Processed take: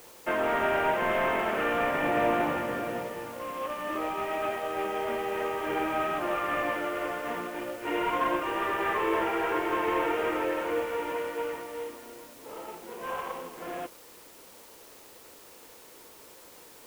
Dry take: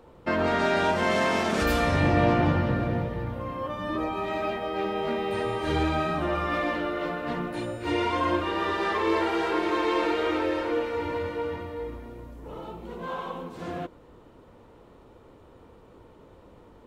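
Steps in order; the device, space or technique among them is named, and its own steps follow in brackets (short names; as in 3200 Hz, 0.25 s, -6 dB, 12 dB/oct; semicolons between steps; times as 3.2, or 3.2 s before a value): army field radio (BPF 380–3000 Hz; CVSD 16 kbps; white noise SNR 22 dB)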